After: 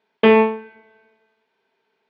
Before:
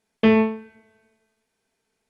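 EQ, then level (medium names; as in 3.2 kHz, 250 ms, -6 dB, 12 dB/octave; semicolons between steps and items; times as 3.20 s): cabinet simulation 160–3500 Hz, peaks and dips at 400 Hz +9 dB, 610 Hz +4 dB, 940 Hz +10 dB, 1.5 kHz +4 dB; treble shelf 2.6 kHz +11.5 dB; 0.0 dB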